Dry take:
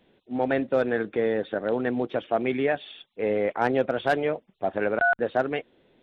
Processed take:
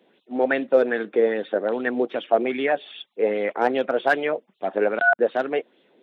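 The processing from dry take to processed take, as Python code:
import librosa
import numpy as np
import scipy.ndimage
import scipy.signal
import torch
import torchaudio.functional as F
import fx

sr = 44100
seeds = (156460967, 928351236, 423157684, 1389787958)

y = scipy.signal.sosfilt(scipy.signal.butter(4, 190.0, 'highpass', fs=sr, output='sos'), x)
y = fx.bell_lfo(y, sr, hz=2.5, low_hz=390.0, high_hz=3500.0, db=9)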